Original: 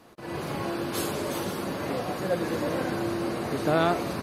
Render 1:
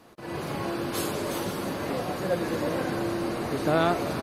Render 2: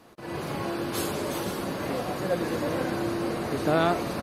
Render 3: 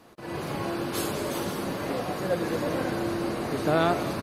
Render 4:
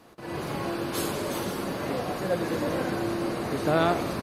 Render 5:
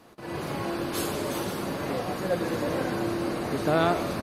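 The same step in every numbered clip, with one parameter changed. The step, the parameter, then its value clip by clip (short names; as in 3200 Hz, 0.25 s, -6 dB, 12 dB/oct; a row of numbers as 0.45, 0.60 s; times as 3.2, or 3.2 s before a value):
frequency-shifting echo, time: 335, 496, 215, 89, 144 ms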